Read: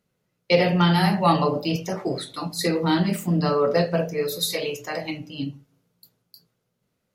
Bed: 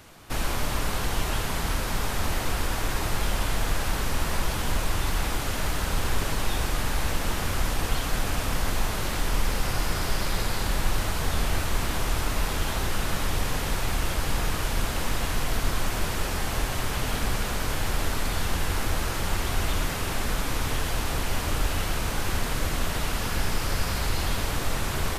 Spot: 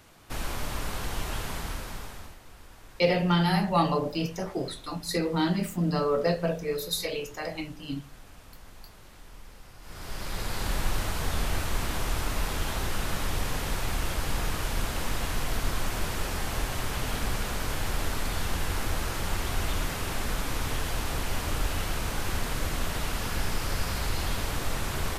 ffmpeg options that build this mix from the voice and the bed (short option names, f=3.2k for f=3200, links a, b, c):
-filter_complex "[0:a]adelay=2500,volume=-5dB[a];[1:a]volume=14.5dB,afade=t=out:st=1.49:d=0.88:silence=0.133352,afade=t=in:st=9.81:d=0.88:silence=0.1[b];[a][b]amix=inputs=2:normalize=0"